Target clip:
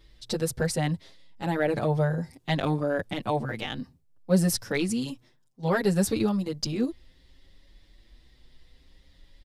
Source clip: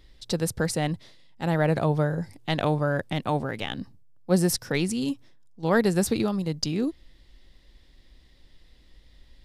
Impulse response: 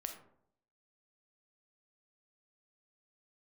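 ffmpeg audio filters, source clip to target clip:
-filter_complex "[0:a]asplit=2[a][b];[b]asoftclip=type=tanh:threshold=-16.5dB,volume=-6dB[c];[a][c]amix=inputs=2:normalize=0,asplit=2[d][e];[e]adelay=6.6,afreqshift=0.63[f];[d][f]amix=inputs=2:normalize=1,volume=-1.5dB"

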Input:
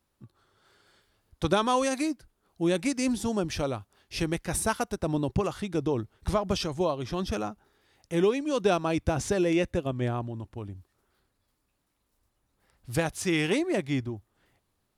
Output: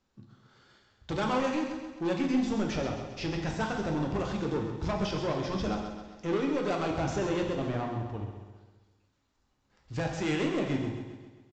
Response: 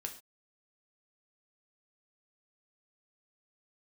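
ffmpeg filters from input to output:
-filter_complex "[0:a]atempo=1.3,acrossover=split=3100[a][b];[b]acompressor=threshold=-42dB:ratio=4:attack=1:release=60[c];[a][c]amix=inputs=2:normalize=0,bandreject=f=60:t=h:w=6,bandreject=f=120:t=h:w=6,aresample=16000,asoftclip=type=tanh:threshold=-27.5dB,aresample=44100,aecho=1:1:132|264|396|528|660|792:0.355|0.188|0.0997|0.0528|0.028|0.0148[d];[1:a]atrim=start_sample=2205,asetrate=24696,aresample=44100[e];[d][e]afir=irnorm=-1:irlink=0"

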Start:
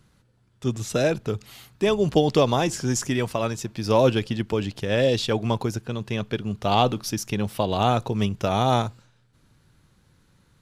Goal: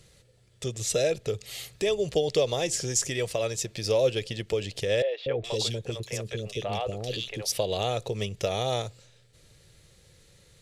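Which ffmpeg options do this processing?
-filter_complex "[0:a]bandreject=f=1.5k:w=8.5,acompressor=threshold=-36dB:ratio=2,equalizer=f=250:t=o:w=1:g=-12,equalizer=f=500:t=o:w=1:g=11,equalizer=f=1k:t=o:w=1:g=-11,equalizer=f=2k:t=o:w=1:g=4,equalizer=f=4k:t=o:w=1:g=4,equalizer=f=8k:t=o:w=1:g=8,asettb=1/sr,asplit=3[a][b][c];[a]atrim=end=5.024[d];[b]atrim=start=5.02:end=7.52,asetpts=PTS-STARTPTS,afade=t=in:d=0.004:c=qsin,afade=t=out:st=2.496:d=0.004:c=qsin,acrossover=split=500|2600[e][f][g];[e]adelay=240[h];[g]adelay=420[i];[h][f][i]amix=inputs=3:normalize=0,atrim=end_sample=110250[j];[c]atrim=start=7.516[k];[d][j]acrossfade=d=0.004:c1=hsin:c2=qsin[l];[l][k]acrossfade=d=0.004:c1=qsin:c2=hsin,volume=3dB"

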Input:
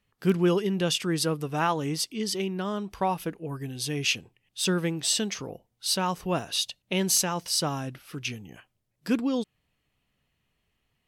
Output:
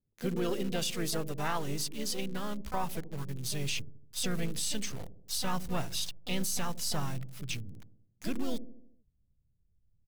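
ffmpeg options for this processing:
-filter_complex "[0:a]aeval=exprs='if(lt(val(0),0),0.708*val(0),val(0))':c=same,atempo=1.1,highshelf=f=3.6k:g=6,asplit=3[a][b][c];[b]asetrate=37084,aresample=44100,atempo=1.18921,volume=-16dB[d];[c]asetrate=58866,aresample=44100,atempo=0.749154,volume=-7dB[e];[a][d][e]amix=inputs=3:normalize=0,acrossover=split=530[f][g];[f]aecho=1:1:77|154|231|308|385|462:0.299|0.158|0.0839|0.0444|0.0236|0.0125[h];[g]acrusher=bits=6:mix=0:aa=0.000001[i];[h][i]amix=inputs=2:normalize=0,asubboost=boost=5.5:cutoff=120,alimiter=limit=-16dB:level=0:latency=1:release=11,volume=-6.5dB"

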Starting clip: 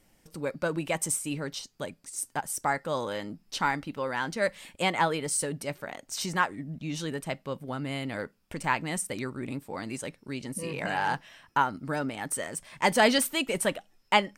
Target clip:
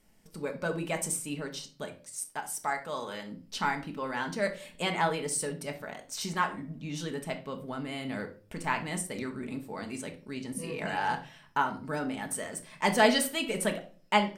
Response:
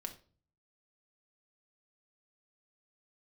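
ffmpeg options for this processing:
-filter_complex "[0:a]asettb=1/sr,asplit=3[a][b][c];[a]atrim=end=1.874[d];[b]atrim=start=1.87:end=3.32,asetpts=PTS-STARTPTS,afade=t=in:d=0.004:c=qsin,afade=t=out:st=1.446:d=0.004:c=qsin,lowshelf=f=470:g=-8[e];[c]atrim=start=3.316[f];[d][e]acrossfade=d=0.004:c1=hsin:c2=qsin[g];[g][f]acrossfade=d=0.004:c1=qsin:c2=hsin[h];[1:a]atrim=start_sample=2205[i];[h][i]afir=irnorm=-1:irlink=0"

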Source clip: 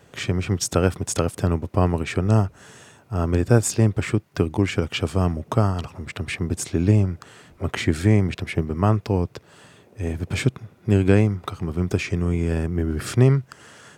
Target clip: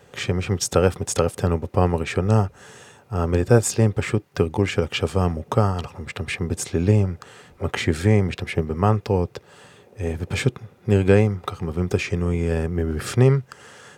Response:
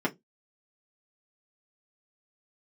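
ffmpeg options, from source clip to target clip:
-filter_complex "[0:a]asplit=2[a][b];[1:a]atrim=start_sample=2205,asetrate=88200,aresample=44100[c];[b][c]afir=irnorm=-1:irlink=0,volume=-14.5dB[d];[a][d]amix=inputs=2:normalize=0"

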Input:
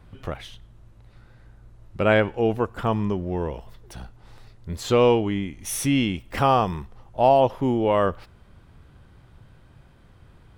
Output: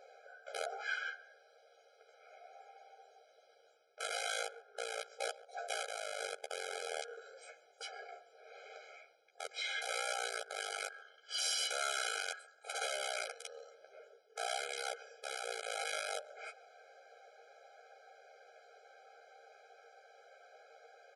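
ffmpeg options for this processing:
-filter_complex "[0:a]acrossover=split=170|3000[a][b][c];[b]acompressor=threshold=-30dB:ratio=5[d];[a][d][c]amix=inputs=3:normalize=0,aeval=exprs='(mod(12.6*val(0)+1,2)-1)/12.6':c=same,bandreject=f=760:w=12,areverse,acompressor=threshold=-38dB:ratio=8,areverse,aecho=1:1:6.4:0.65,asetrate=22050,aresample=44100,asplit=2[e][f];[f]adelay=138,lowpass=f=1.1k:p=1,volume=-16.5dB,asplit=2[g][h];[h]adelay=138,lowpass=f=1.1k:p=1,volume=0.41,asplit=2[i][j];[j]adelay=138,lowpass=f=1.1k:p=1,volume=0.41,asplit=2[k][l];[l]adelay=138,lowpass=f=1.1k:p=1,volume=0.41[m];[g][i][k][m]amix=inputs=4:normalize=0[n];[e][n]amix=inputs=2:normalize=0,asubboost=boost=7.5:cutoff=140,afftfilt=real='re*eq(mod(floor(b*sr/1024/420),2),1)':imag='im*eq(mod(floor(b*sr/1024/420),2),1)':win_size=1024:overlap=0.75,volume=6.5dB"

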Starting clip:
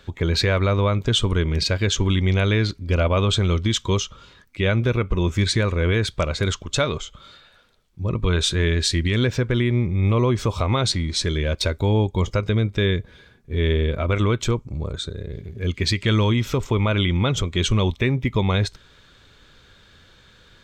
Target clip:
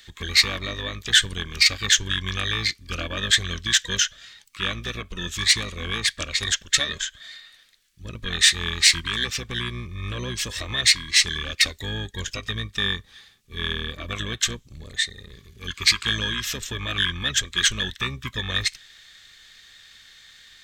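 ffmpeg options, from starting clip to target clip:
-filter_complex "[0:a]aexciter=amount=9.4:drive=6.8:freq=2.5k,asplit=2[a][b];[b]asetrate=22050,aresample=44100,atempo=2,volume=-3dB[c];[a][c]amix=inputs=2:normalize=0,volume=-15dB"

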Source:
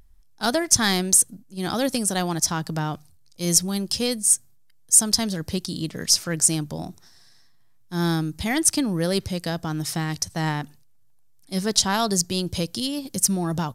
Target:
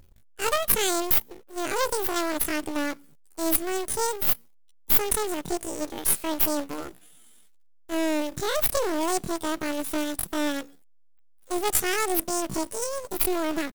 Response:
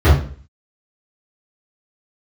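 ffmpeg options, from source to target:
-af "aeval=exprs='if(lt(val(0),0),0.251*val(0),val(0))':c=same,acrusher=bits=2:mode=log:mix=0:aa=0.000001,asetrate=83250,aresample=44100,atempo=0.529732"

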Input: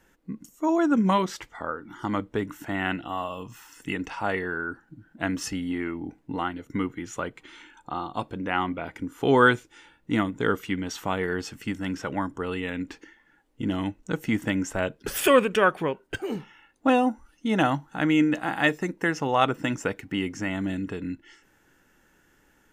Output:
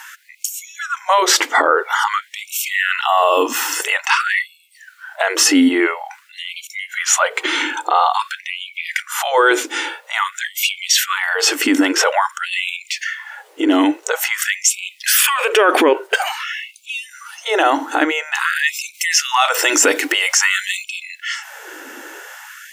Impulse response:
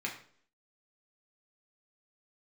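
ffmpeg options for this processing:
-filter_complex "[0:a]asplit=3[a][b][c];[a]afade=t=out:st=18.93:d=0.02[d];[b]highshelf=f=2.4k:g=12,afade=t=in:st=18.93:d=0.02,afade=t=out:st=20.84:d=0.02[e];[c]afade=t=in:st=20.84:d=0.02[f];[d][e][f]amix=inputs=3:normalize=0,alimiter=level_in=31dB:limit=-1dB:release=50:level=0:latency=1,afftfilt=real='re*gte(b*sr/1024,250*pow(2200/250,0.5+0.5*sin(2*PI*0.49*pts/sr)))':imag='im*gte(b*sr/1024,250*pow(2200/250,0.5+0.5*sin(2*PI*0.49*pts/sr)))':win_size=1024:overlap=0.75,volume=-2dB"

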